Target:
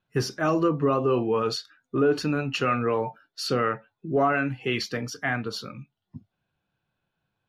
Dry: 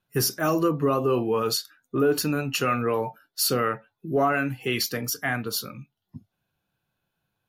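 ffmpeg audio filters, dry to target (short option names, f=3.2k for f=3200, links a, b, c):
-af "lowpass=4.1k"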